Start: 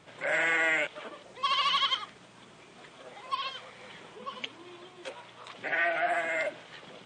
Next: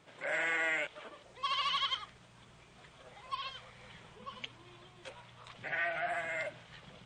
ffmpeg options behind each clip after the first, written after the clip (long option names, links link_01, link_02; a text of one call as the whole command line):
ffmpeg -i in.wav -af "asubboost=boost=11.5:cutoff=95,volume=-6dB" out.wav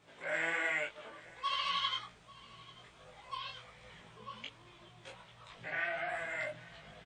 ffmpeg -i in.wav -filter_complex "[0:a]flanger=delay=19.5:depth=5.4:speed=1.3,asplit=2[link_01][link_02];[link_02]adelay=18,volume=-3.5dB[link_03];[link_01][link_03]amix=inputs=2:normalize=0,aecho=1:1:842:0.0841" out.wav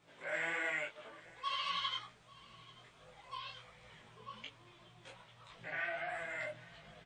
ffmpeg -i in.wav -af "flanger=delay=5.5:depth=3.4:regen=-50:speed=1.6:shape=triangular,volume=1dB" out.wav